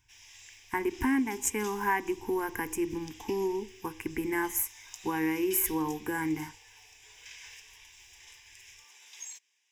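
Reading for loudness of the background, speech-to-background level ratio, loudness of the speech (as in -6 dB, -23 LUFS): -49.0 LUFS, 17.5 dB, -31.5 LUFS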